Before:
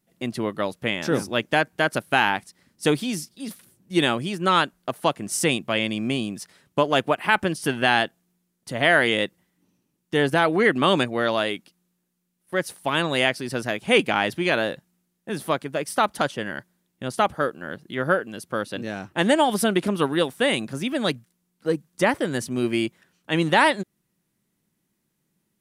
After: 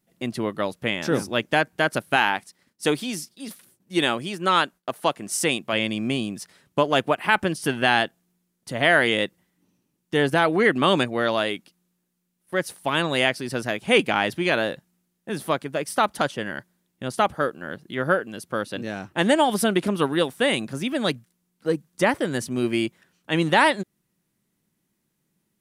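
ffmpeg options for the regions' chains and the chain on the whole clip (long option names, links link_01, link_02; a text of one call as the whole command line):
ffmpeg -i in.wav -filter_complex "[0:a]asettb=1/sr,asplit=3[link_01][link_02][link_03];[link_01]atrim=end=2.164[link_04];[link_02]atrim=start=2.16:end=5.73,asetpts=PTS-STARTPTS,afade=type=in:duration=0.004:curve=qsin,afade=type=out:start_time=3.566:duration=0.004:curve=qsin,agate=range=-33dB:threshold=-59dB:ratio=3:release=100:detection=peak,lowshelf=frequency=170:gain=-9.5[link_05];[link_03]atrim=start=5.726[link_06];[link_04][link_05]acrossfade=duration=0.004:curve1=hsin:curve2=qsin[link_07];[link_07][link_06]acrossfade=duration=0.004:curve1=qsin:curve2=hsin" out.wav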